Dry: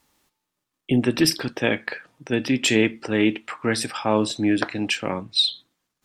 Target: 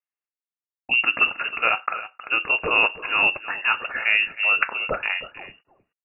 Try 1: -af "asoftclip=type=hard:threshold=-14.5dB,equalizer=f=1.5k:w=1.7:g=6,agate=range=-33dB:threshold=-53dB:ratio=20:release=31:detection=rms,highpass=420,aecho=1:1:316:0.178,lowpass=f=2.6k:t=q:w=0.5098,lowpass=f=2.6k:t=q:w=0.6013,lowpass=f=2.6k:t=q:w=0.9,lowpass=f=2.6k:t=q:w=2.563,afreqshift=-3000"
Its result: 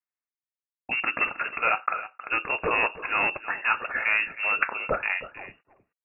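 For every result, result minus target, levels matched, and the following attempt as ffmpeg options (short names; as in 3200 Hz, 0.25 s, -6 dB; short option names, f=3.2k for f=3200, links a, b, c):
hard clip: distortion +22 dB; 125 Hz band +4.5 dB
-af "asoftclip=type=hard:threshold=-8dB,equalizer=f=1.5k:w=1.7:g=6,agate=range=-33dB:threshold=-53dB:ratio=20:release=31:detection=rms,highpass=420,aecho=1:1:316:0.178,lowpass=f=2.6k:t=q:w=0.5098,lowpass=f=2.6k:t=q:w=0.6013,lowpass=f=2.6k:t=q:w=0.9,lowpass=f=2.6k:t=q:w=2.563,afreqshift=-3000"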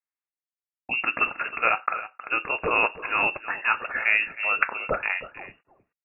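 125 Hz band +3.5 dB
-af "asoftclip=type=hard:threshold=-8dB,equalizer=f=1.5k:w=1.7:g=6,agate=range=-33dB:threshold=-53dB:ratio=20:release=31:detection=rms,highpass=170,aecho=1:1:316:0.178,lowpass=f=2.6k:t=q:w=0.5098,lowpass=f=2.6k:t=q:w=0.6013,lowpass=f=2.6k:t=q:w=0.9,lowpass=f=2.6k:t=q:w=2.563,afreqshift=-3000"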